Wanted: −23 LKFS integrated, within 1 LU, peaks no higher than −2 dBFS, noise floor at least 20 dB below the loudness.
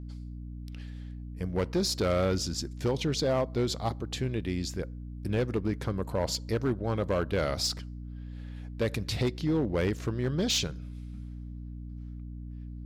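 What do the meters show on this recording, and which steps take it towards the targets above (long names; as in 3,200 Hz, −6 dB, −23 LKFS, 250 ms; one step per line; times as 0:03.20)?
share of clipped samples 1.6%; peaks flattened at −21.5 dBFS; mains hum 60 Hz; hum harmonics up to 300 Hz; level of the hum −38 dBFS; integrated loudness −30.5 LKFS; sample peak −21.5 dBFS; target loudness −23.0 LKFS
→ clipped peaks rebuilt −21.5 dBFS
mains-hum notches 60/120/180/240/300 Hz
level +7.5 dB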